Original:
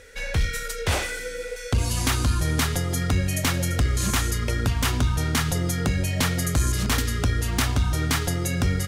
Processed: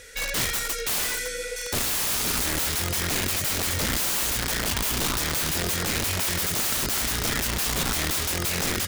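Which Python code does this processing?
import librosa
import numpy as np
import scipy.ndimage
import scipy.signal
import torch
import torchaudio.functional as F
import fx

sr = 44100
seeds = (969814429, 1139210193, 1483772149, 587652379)

y = fx.high_shelf(x, sr, hz=2200.0, db=11.0)
y = (np.mod(10.0 ** (18.5 / 20.0) * y + 1.0, 2.0) - 1.0) / 10.0 ** (18.5 / 20.0)
y = F.gain(torch.from_numpy(y), -2.0).numpy()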